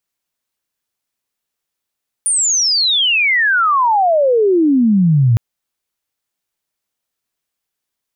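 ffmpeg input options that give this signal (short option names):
-f lavfi -i "aevalsrc='pow(10,(-12+4*t/3.11)/20)*sin(2*PI*9500*3.11/log(110/9500)*(exp(log(110/9500)*t/3.11)-1))':d=3.11:s=44100"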